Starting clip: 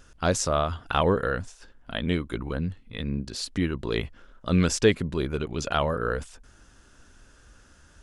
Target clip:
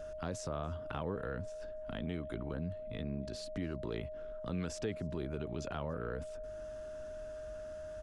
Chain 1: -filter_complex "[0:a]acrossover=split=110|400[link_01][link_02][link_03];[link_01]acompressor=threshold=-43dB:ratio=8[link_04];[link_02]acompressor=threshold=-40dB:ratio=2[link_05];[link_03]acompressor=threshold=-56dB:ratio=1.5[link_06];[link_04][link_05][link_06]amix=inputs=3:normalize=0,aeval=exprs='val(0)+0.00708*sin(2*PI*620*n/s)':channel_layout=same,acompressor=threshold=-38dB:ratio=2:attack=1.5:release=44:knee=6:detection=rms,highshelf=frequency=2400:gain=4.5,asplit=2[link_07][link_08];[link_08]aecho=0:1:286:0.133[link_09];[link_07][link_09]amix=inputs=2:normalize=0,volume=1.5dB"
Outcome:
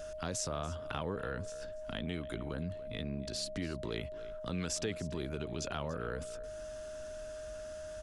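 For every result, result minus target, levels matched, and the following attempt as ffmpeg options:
echo-to-direct +10.5 dB; 4,000 Hz band +7.0 dB
-filter_complex "[0:a]acrossover=split=110|400[link_01][link_02][link_03];[link_01]acompressor=threshold=-43dB:ratio=8[link_04];[link_02]acompressor=threshold=-40dB:ratio=2[link_05];[link_03]acompressor=threshold=-56dB:ratio=1.5[link_06];[link_04][link_05][link_06]amix=inputs=3:normalize=0,aeval=exprs='val(0)+0.00708*sin(2*PI*620*n/s)':channel_layout=same,acompressor=threshold=-38dB:ratio=2:attack=1.5:release=44:knee=6:detection=rms,highshelf=frequency=2400:gain=4.5,asplit=2[link_07][link_08];[link_08]aecho=0:1:286:0.0398[link_09];[link_07][link_09]amix=inputs=2:normalize=0,volume=1.5dB"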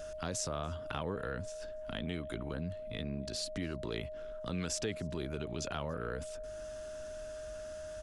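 4,000 Hz band +7.0 dB
-filter_complex "[0:a]acrossover=split=110|400[link_01][link_02][link_03];[link_01]acompressor=threshold=-43dB:ratio=8[link_04];[link_02]acompressor=threshold=-40dB:ratio=2[link_05];[link_03]acompressor=threshold=-56dB:ratio=1.5[link_06];[link_04][link_05][link_06]amix=inputs=3:normalize=0,aeval=exprs='val(0)+0.00708*sin(2*PI*620*n/s)':channel_layout=same,acompressor=threshold=-38dB:ratio=2:attack=1.5:release=44:knee=6:detection=rms,highshelf=frequency=2400:gain=-7,asplit=2[link_07][link_08];[link_08]aecho=0:1:286:0.0398[link_09];[link_07][link_09]amix=inputs=2:normalize=0,volume=1.5dB"

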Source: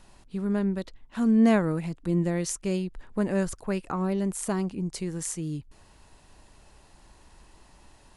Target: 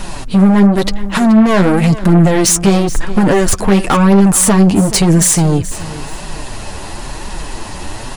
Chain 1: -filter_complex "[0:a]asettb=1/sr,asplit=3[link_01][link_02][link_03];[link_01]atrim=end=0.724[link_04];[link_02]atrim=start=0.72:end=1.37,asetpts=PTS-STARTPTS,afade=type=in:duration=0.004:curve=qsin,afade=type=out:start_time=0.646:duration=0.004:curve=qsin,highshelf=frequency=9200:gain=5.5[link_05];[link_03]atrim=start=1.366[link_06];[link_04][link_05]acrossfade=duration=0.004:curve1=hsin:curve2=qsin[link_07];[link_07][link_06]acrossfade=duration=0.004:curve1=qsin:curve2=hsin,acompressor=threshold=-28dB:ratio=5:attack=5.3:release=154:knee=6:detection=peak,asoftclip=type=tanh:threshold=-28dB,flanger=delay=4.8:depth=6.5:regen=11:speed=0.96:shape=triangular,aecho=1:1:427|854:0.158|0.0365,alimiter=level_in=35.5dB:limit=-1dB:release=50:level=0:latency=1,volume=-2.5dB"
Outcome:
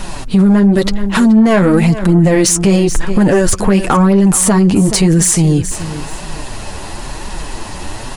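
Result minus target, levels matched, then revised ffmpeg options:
soft clipping: distortion −8 dB
-filter_complex "[0:a]asettb=1/sr,asplit=3[link_01][link_02][link_03];[link_01]atrim=end=0.724[link_04];[link_02]atrim=start=0.72:end=1.37,asetpts=PTS-STARTPTS,afade=type=in:duration=0.004:curve=qsin,afade=type=out:start_time=0.646:duration=0.004:curve=qsin,highshelf=frequency=9200:gain=5.5[link_05];[link_03]atrim=start=1.366[link_06];[link_04][link_05]acrossfade=duration=0.004:curve1=hsin:curve2=qsin[link_07];[link_07][link_06]acrossfade=duration=0.004:curve1=qsin:curve2=hsin,acompressor=threshold=-28dB:ratio=5:attack=5.3:release=154:knee=6:detection=peak,asoftclip=type=tanh:threshold=-36.5dB,flanger=delay=4.8:depth=6.5:regen=11:speed=0.96:shape=triangular,aecho=1:1:427|854:0.158|0.0365,alimiter=level_in=35.5dB:limit=-1dB:release=50:level=0:latency=1,volume=-2.5dB"

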